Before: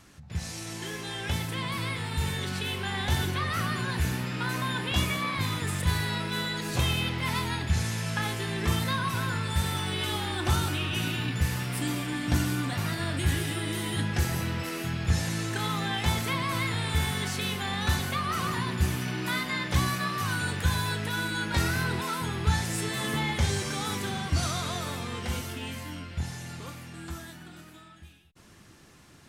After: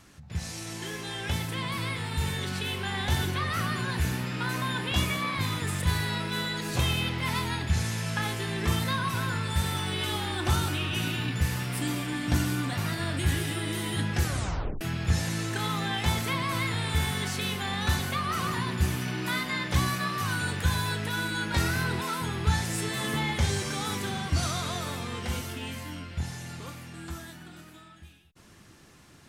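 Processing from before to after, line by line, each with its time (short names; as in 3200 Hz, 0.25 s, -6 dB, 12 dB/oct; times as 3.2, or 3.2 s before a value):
14.23 tape stop 0.58 s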